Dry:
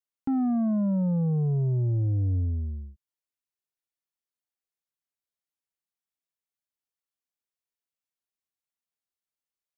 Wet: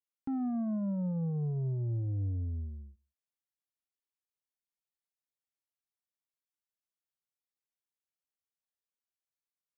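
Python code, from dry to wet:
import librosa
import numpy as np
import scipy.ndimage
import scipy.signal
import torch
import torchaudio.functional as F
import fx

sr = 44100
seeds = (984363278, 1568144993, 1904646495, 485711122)

y = fx.echo_feedback(x, sr, ms=60, feedback_pct=49, wet_db=-22.0)
y = F.gain(torch.from_numpy(y), -8.0).numpy()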